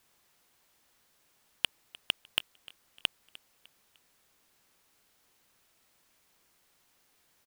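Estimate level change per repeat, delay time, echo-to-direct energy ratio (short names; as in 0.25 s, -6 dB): -8.0 dB, 0.302 s, -20.5 dB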